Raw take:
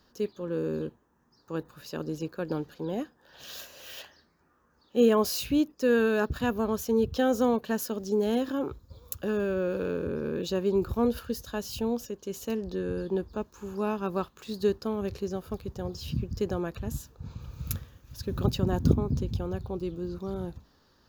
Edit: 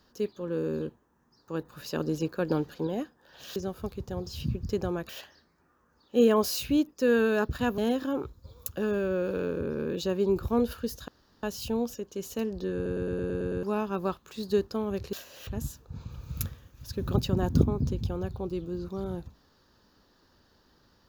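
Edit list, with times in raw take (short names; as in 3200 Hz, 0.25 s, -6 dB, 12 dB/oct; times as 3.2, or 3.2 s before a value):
1.72–2.87 gain +4 dB
3.56–3.9 swap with 15.24–16.77
6.59–8.24 cut
11.54 insert room tone 0.35 s
12.86 stutter in place 0.11 s, 8 plays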